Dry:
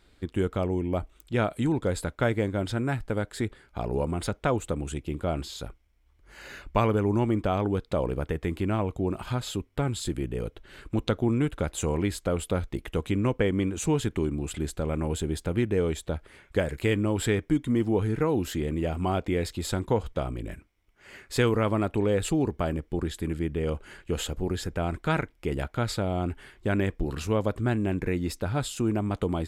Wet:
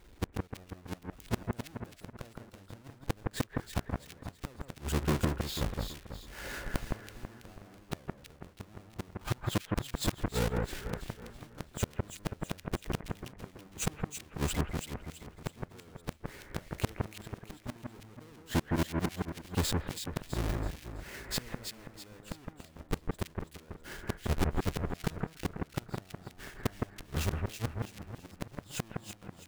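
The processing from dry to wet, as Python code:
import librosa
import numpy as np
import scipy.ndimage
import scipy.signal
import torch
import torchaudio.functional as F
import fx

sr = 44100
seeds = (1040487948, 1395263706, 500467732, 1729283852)

y = fx.halfwave_hold(x, sr)
y = fx.gate_flip(y, sr, shuts_db=-19.0, range_db=-33)
y = fx.echo_alternate(y, sr, ms=164, hz=2000.0, feedback_pct=62, wet_db=-2)
y = F.gain(torch.from_numpy(y), -2.0).numpy()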